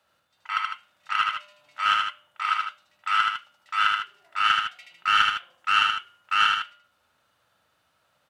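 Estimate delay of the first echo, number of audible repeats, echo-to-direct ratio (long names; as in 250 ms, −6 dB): 77 ms, 2, −2.0 dB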